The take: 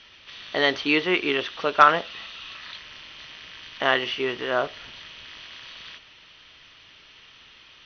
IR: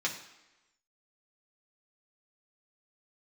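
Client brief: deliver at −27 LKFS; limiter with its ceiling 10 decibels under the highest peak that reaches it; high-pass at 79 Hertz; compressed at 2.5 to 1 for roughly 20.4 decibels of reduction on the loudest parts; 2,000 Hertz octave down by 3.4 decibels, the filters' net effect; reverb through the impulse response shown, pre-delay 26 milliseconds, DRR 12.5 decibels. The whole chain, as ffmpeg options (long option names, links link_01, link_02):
-filter_complex "[0:a]highpass=79,equalizer=frequency=2000:width_type=o:gain=-4.5,acompressor=threshold=-43dB:ratio=2.5,alimiter=level_in=6.5dB:limit=-24dB:level=0:latency=1,volume=-6.5dB,asplit=2[link_01][link_02];[1:a]atrim=start_sample=2205,adelay=26[link_03];[link_02][link_03]afir=irnorm=-1:irlink=0,volume=-18.5dB[link_04];[link_01][link_04]amix=inputs=2:normalize=0,volume=17dB"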